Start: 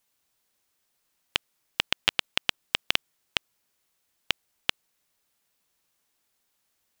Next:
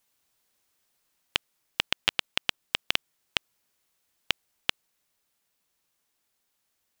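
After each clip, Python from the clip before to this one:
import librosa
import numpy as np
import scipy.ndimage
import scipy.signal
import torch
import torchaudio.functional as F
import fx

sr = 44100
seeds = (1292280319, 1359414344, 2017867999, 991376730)

y = fx.rider(x, sr, range_db=10, speed_s=2.0)
y = y * 10.0 ** (-1.5 / 20.0)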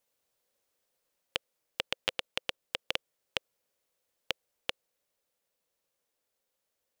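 y = fx.peak_eq(x, sr, hz=520.0, db=13.0, octaves=0.59)
y = y * 10.0 ** (-7.0 / 20.0)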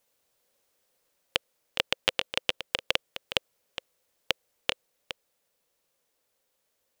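y = x + 10.0 ** (-10.5 / 20.0) * np.pad(x, (int(414 * sr / 1000.0), 0))[:len(x)]
y = y * 10.0 ** (6.0 / 20.0)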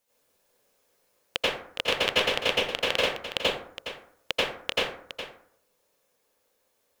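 y = fx.rev_plate(x, sr, seeds[0], rt60_s=0.62, hf_ratio=0.45, predelay_ms=75, drr_db=-9.0)
y = y * 10.0 ** (-3.5 / 20.0)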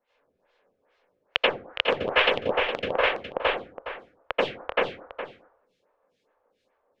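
y = fx.filter_lfo_lowpass(x, sr, shape='sine', hz=2.3, low_hz=950.0, high_hz=3400.0, q=1.3)
y = fx.stagger_phaser(y, sr, hz=2.4)
y = y * 10.0 ** (6.0 / 20.0)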